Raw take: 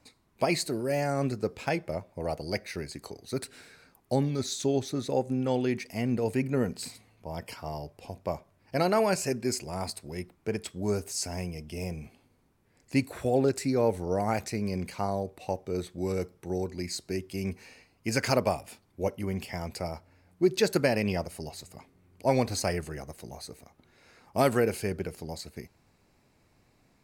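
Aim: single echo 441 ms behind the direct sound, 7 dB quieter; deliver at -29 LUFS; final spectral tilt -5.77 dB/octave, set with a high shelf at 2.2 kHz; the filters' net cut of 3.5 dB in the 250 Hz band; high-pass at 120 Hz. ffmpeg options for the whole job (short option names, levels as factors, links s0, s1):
-af "highpass=120,equalizer=f=250:t=o:g=-4,highshelf=f=2200:g=-8.5,aecho=1:1:441:0.447,volume=1.5"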